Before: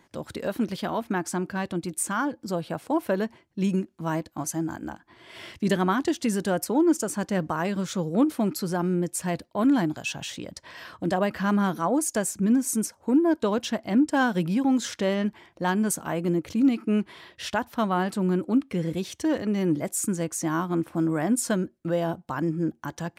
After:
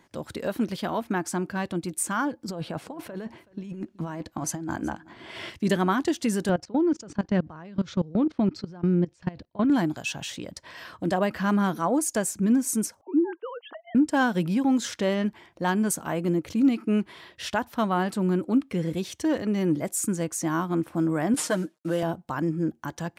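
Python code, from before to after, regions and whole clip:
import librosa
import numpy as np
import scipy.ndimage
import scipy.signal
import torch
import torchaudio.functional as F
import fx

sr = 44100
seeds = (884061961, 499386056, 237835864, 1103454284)

y = fx.chain(x, sr, fx.high_shelf(hz=8800.0, db=-11.5),
    fx.over_compress(threshold_db=-33.0, ratio=-1.0),
    fx.echo_single(ms=375, db=-21.5), at=(2.48, 5.5))
y = fx.chain(y, sr, fx.lowpass(hz=5200.0, slope=24),
    fx.low_shelf(hz=180.0, db=12.0),
    fx.level_steps(step_db=21), at=(6.49, 9.7))
y = fx.chain(y, sr, fx.sine_speech(),
    fx.highpass(hz=390.0, slope=12), at=(13.01, 13.95))
y = fx.chain(y, sr, fx.cvsd(bps=64000),
    fx.highpass(hz=210.0, slope=12),
    fx.comb(ms=6.5, depth=0.62), at=(21.34, 22.03))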